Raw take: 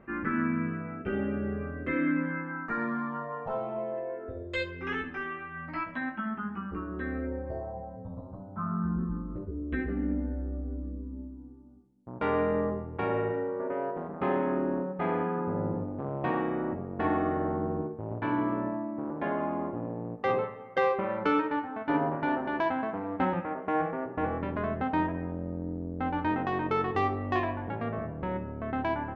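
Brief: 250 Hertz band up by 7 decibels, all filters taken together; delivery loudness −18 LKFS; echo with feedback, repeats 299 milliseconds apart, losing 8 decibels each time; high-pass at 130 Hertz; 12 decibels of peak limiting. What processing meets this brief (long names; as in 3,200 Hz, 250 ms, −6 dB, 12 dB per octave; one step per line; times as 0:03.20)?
high-pass filter 130 Hz
parametric band 250 Hz +9 dB
brickwall limiter −22.5 dBFS
repeating echo 299 ms, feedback 40%, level −8 dB
level +13 dB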